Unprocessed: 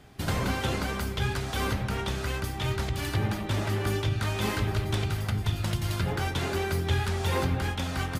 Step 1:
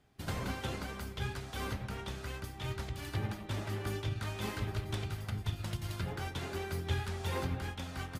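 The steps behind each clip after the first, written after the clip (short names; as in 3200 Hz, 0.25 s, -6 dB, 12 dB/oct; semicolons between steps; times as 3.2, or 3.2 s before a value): upward expander 1.5:1, over -41 dBFS; gain -6.5 dB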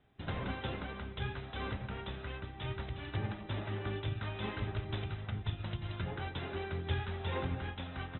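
Chebyshev low-pass 3900 Hz, order 10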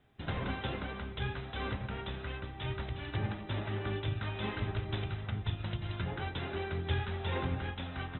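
de-hum 47.5 Hz, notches 28; gain +2.5 dB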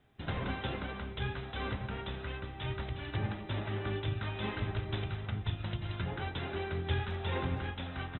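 speakerphone echo 0.21 s, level -16 dB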